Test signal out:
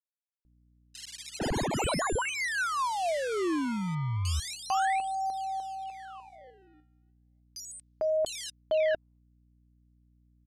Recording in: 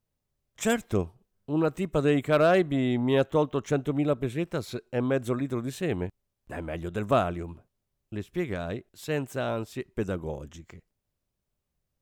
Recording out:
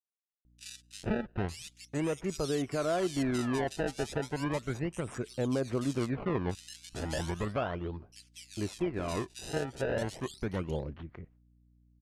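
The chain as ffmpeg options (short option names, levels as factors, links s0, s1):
-filter_complex "[0:a]acrusher=samples=23:mix=1:aa=0.000001:lfo=1:lforange=36.8:lforate=0.35,lowpass=f=9900:w=0.5412,lowpass=f=9900:w=1.3066,alimiter=limit=0.0794:level=0:latency=1:release=317,aphaser=in_gain=1:out_gain=1:delay=3:decay=0.24:speed=0.18:type=sinusoidal,agate=range=0.0224:threshold=0.002:ratio=3:detection=peak,aeval=exprs='val(0)+0.000708*(sin(2*PI*60*n/s)+sin(2*PI*2*60*n/s)/2+sin(2*PI*3*60*n/s)/3+sin(2*PI*4*60*n/s)/4+sin(2*PI*5*60*n/s)/5)':c=same,acrossover=split=2900[s0][s1];[s0]adelay=450[s2];[s2][s1]amix=inputs=2:normalize=0"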